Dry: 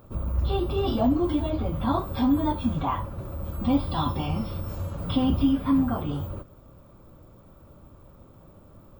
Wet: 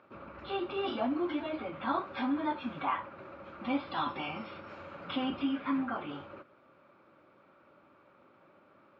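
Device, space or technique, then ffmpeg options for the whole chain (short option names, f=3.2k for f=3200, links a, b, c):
phone earpiece: -af "highpass=460,equalizer=f=470:t=q:w=4:g=-7,equalizer=f=690:t=q:w=4:g=-6,equalizer=f=1k:t=q:w=4:g=-5,equalizer=f=1.5k:t=q:w=4:g=4,equalizer=f=2.3k:t=q:w=4:g=6,equalizer=f=3.4k:t=q:w=4:g=-5,lowpass=f=3.7k:w=0.5412,lowpass=f=3.7k:w=1.3066"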